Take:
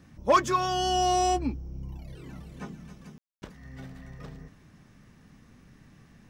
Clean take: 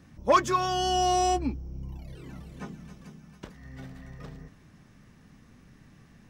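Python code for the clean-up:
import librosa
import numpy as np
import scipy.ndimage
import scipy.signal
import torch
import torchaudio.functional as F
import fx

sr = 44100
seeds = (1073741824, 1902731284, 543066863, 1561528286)

y = fx.fix_declip(x, sr, threshold_db=-13.0)
y = fx.fix_ambience(y, sr, seeds[0], print_start_s=4.82, print_end_s=5.32, start_s=3.18, end_s=3.42)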